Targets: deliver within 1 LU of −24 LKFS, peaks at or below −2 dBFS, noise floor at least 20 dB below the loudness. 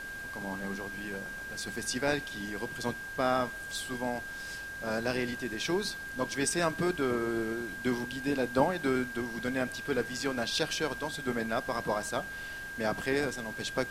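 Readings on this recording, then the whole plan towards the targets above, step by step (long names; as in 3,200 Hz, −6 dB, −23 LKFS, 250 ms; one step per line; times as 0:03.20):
interfering tone 1,600 Hz; level of the tone −39 dBFS; background noise floor −41 dBFS; target noise floor −53 dBFS; integrated loudness −33.0 LKFS; sample peak −12.5 dBFS; target loudness −24.0 LKFS
→ notch filter 1,600 Hz, Q 30
broadband denoise 12 dB, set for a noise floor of −41 dBFS
level +9 dB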